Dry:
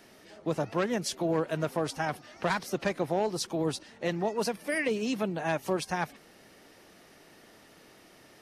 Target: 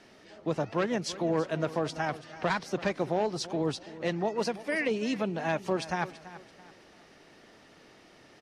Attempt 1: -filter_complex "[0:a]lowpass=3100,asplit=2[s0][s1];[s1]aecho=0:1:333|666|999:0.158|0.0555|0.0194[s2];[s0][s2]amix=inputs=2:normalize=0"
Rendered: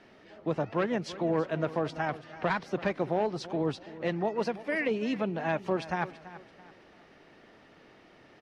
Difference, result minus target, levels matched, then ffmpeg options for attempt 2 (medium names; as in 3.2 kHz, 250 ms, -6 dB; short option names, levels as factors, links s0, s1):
8 kHz band -10.0 dB
-filter_complex "[0:a]lowpass=6200,asplit=2[s0][s1];[s1]aecho=0:1:333|666|999:0.158|0.0555|0.0194[s2];[s0][s2]amix=inputs=2:normalize=0"